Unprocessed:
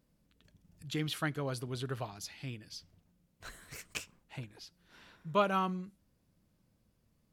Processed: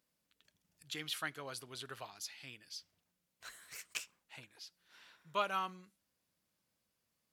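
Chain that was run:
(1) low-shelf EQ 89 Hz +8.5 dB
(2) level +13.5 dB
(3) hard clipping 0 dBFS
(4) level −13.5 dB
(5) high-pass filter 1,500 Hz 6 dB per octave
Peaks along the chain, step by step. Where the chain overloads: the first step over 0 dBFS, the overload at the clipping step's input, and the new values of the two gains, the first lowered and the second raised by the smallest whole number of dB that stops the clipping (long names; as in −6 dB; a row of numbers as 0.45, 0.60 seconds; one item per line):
−16.5, −3.0, −3.0, −16.5, −18.0 dBFS
no step passes full scale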